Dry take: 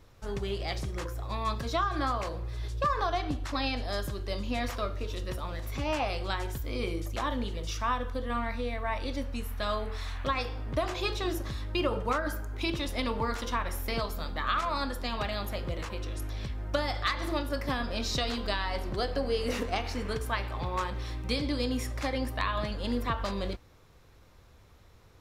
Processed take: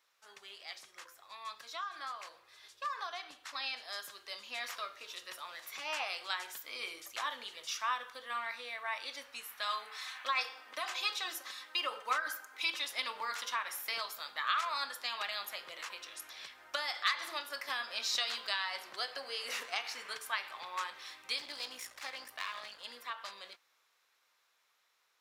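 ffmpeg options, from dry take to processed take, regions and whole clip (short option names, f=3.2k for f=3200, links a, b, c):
-filter_complex "[0:a]asettb=1/sr,asplit=3[a][b][c];[a]atrim=end=9.664[d];[b]atrim=start=9.66:end=12.83,asetpts=PTS-STARTPTS,afade=t=in:d=0.004:c=qsin,afade=t=out:st=3.166:d=0.004:c=qsin,highpass=240,aecho=1:1:3.9:0.46,atrim=end_sample=139797[e];[c]atrim=start=12.826[f];[d][e]acrossfade=d=0.004:c1=hsin:c2=qsin[g];[g][f]acrossfade=d=0.004:c1=qsin:c2=hsin,asettb=1/sr,asplit=3[h][i][j];[h]atrim=end=21.384[k];[i]atrim=start=21.38:end=22.85,asetpts=PTS-STARTPTS,afade=t=in:d=0.004:c=qsin,afade=t=out:st=1.466:d=0.004:c=qsin,aeval=exprs='clip(val(0),-1,0.0133)':c=same,lowshelf=f=140:g=8.5[l];[j]atrim=start=22.846[m];[k][l]acrossfade=d=0.004:c1=hsin:c2=qsin[n];[n][m]acrossfade=d=0.004:c1=qsin:c2=hsin,dynaudnorm=f=730:g=11:m=8dB,highpass=1.3k,volume=-7.5dB"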